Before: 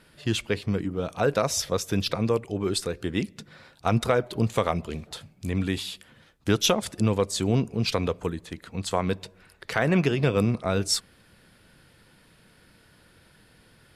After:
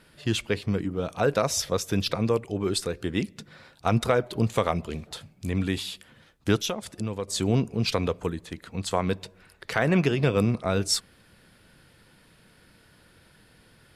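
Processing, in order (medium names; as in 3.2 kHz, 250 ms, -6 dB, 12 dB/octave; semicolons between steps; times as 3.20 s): 6.58–7.28 s: compression 1.5:1, threshold -41 dBFS, peak gain reduction 8.5 dB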